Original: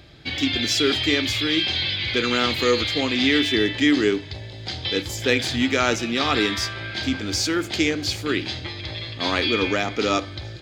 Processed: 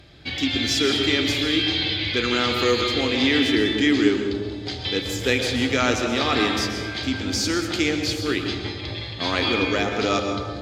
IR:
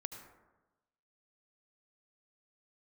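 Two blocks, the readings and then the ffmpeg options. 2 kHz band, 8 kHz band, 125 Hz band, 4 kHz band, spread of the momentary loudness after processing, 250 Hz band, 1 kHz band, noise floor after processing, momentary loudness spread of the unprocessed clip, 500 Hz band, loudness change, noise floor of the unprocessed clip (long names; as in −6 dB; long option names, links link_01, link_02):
−0.5 dB, −0.5 dB, +1.0 dB, −0.5 dB, 8 LU, +1.0 dB, +0.5 dB, −33 dBFS, 10 LU, +0.5 dB, 0.0 dB, −37 dBFS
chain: -filter_complex "[1:a]atrim=start_sample=2205,asetrate=27783,aresample=44100[link_01];[0:a][link_01]afir=irnorm=-1:irlink=0"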